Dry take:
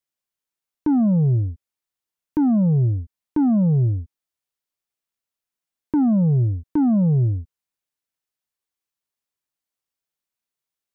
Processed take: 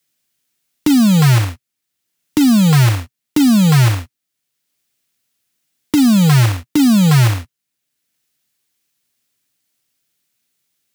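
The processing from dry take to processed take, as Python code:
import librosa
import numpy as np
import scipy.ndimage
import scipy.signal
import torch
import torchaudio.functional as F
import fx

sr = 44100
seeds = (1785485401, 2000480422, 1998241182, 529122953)

y = fx.graphic_eq(x, sr, hz=(125, 250, 500, 1000), db=(11, 7, -3, -9))
y = fx.quant_float(y, sr, bits=2)
y = fx.low_shelf(y, sr, hz=320.0, db=-11.5)
y = fx.band_squash(y, sr, depth_pct=40)
y = y * 10.0 ** (6.0 / 20.0)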